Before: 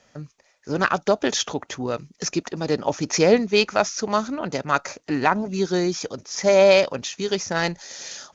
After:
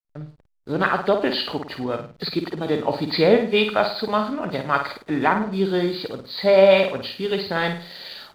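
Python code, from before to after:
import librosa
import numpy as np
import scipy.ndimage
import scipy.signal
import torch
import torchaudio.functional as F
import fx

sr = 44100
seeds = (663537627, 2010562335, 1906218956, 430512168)

y = fx.freq_compress(x, sr, knee_hz=2300.0, ratio=1.5)
y = fx.room_flutter(y, sr, wall_m=8.9, rt60_s=0.45)
y = fx.backlash(y, sr, play_db=-42.0)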